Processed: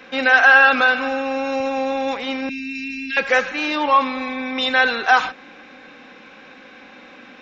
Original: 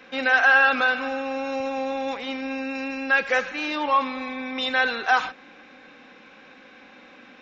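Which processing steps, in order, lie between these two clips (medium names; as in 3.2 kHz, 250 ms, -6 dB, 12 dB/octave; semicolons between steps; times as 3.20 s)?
2.49–3.17 s: elliptic band-stop 240–2300 Hz, stop band 60 dB; trim +5.5 dB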